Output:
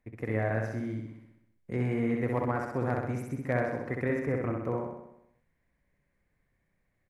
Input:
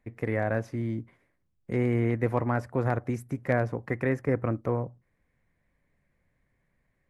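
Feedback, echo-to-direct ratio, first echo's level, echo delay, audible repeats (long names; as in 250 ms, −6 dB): 59%, −1.0 dB, −3.0 dB, 64 ms, 7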